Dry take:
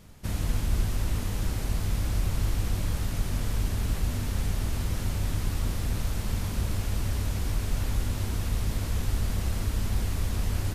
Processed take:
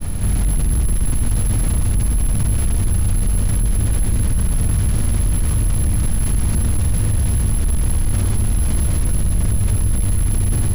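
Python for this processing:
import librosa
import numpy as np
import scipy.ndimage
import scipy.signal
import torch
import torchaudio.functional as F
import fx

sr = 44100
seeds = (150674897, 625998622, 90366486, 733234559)

y = fx.granulator(x, sr, seeds[0], grain_ms=100.0, per_s=20.0, spray_ms=100.0, spread_st=0)
y = np.clip(10.0 ** (31.5 / 20.0) * y, -1.0, 1.0) / 10.0 ** (31.5 / 20.0)
y = fx.low_shelf(y, sr, hz=250.0, db=11.0)
y = (np.kron(y[::4], np.eye(4)[0]) * 4)[:len(y)]
y = fx.air_absorb(y, sr, metres=97.0)
y = fx.echo_split(y, sr, split_hz=1700.0, low_ms=116, high_ms=199, feedback_pct=52, wet_db=-8.5)
y = fx.env_flatten(y, sr, amount_pct=70)
y = y * 10.0 ** (4.5 / 20.0)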